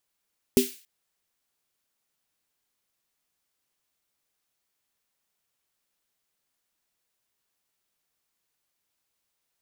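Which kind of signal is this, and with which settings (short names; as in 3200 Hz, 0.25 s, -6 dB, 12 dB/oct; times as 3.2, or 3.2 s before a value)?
snare drum length 0.28 s, tones 250 Hz, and 390 Hz, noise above 2200 Hz, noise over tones -10 dB, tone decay 0.19 s, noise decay 0.44 s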